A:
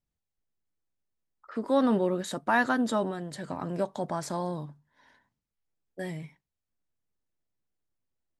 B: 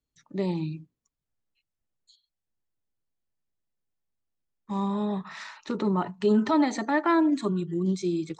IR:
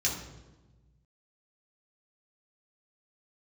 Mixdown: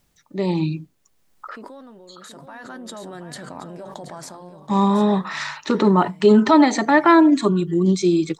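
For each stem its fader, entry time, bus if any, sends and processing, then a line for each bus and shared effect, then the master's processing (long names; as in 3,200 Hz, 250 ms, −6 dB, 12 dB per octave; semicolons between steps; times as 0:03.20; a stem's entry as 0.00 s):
−14.0 dB, 0.00 s, no send, echo send −11 dB, envelope flattener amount 100%; automatic ducking −11 dB, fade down 0.55 s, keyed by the second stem
+0.5 dB, 0.00 s, no send, no echo send, automatic gain control gain up to 12.5 dB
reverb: not used
echo: single-tap delay 726 ms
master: low-shelf EQ 170 Hz −6 dB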